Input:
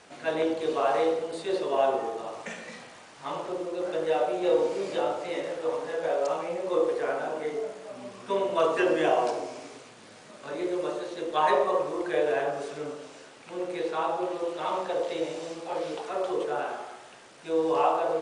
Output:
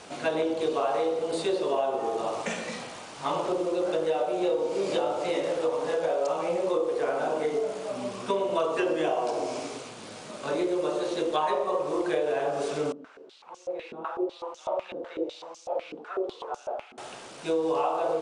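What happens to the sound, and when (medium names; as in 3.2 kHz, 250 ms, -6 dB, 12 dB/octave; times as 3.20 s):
12.92–16.98 s: step-sequenced band-pass 8 Hz 240–6200 Hz
whole clip: peaking EQ 1.8 kHz -5.5 dB 0.56 oct; compression 6:1, threshold -32 dBFS; trim +8 dB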